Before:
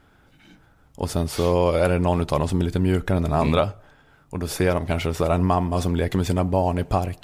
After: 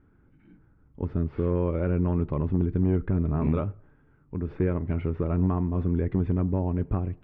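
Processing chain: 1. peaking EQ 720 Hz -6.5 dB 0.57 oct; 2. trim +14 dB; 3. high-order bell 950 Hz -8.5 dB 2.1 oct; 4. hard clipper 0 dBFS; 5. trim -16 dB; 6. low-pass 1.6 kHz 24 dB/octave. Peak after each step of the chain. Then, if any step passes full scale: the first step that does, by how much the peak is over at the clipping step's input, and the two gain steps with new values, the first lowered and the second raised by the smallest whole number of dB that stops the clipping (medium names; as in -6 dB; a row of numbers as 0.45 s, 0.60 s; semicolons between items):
-9.0 dBFS, +5.0 dBFS, +3.5 dBFS, 0.0 dBFS, -16.0 dBFS, -15.5 dBFS; step 2, 3.5 dB; step 2 +10 dB, step 5 -12 dB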